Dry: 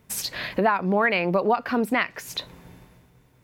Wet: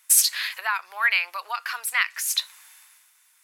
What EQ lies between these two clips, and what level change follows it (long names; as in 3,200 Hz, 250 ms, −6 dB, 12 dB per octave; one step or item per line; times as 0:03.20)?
high-pass filter 1,200 Hz 24 dB per octave
parametric band 9,600 Hz +15 dB 1.5 octaves
+1.5 dB